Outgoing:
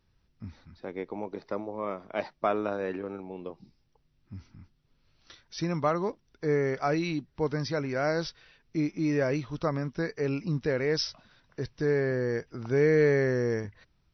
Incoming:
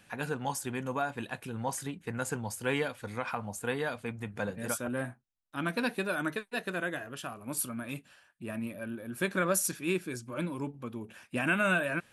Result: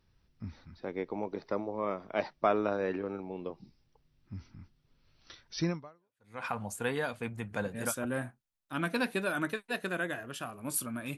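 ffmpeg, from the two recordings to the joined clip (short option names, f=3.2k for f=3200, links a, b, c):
-filter_complex "[0:a]apad=whole_dur=11.17,atrim=end=11.17,atrim=end=6.43,asetpts=PTS-STARTPTS[a];[1:a]atrim=start=2.52:end=8,asetpts=PTS-STARTPTS[b];[a][b]acrossfade=d=0.74:c1=exp:c2=exp"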